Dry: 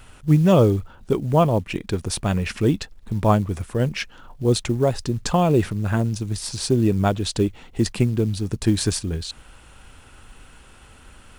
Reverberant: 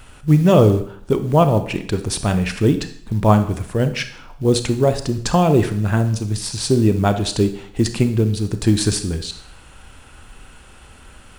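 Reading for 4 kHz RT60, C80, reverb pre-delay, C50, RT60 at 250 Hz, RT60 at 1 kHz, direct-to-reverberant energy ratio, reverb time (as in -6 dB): 0.60 s, 15.0 dB, 27 ms, 11.5 dB, 0.55 s, 0.65 s, 9.0 dB, 0.60 s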